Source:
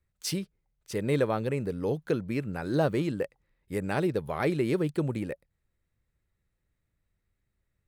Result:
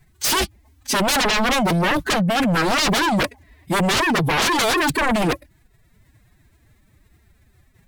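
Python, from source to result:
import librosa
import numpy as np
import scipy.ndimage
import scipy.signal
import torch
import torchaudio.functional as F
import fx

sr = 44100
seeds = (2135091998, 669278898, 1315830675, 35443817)

y = fx.pitch_keep_formants(x, sr, semitones=11.5)
y = fx.fold_sine(y, sr, drive_db=19, ceiling_db=-15.5)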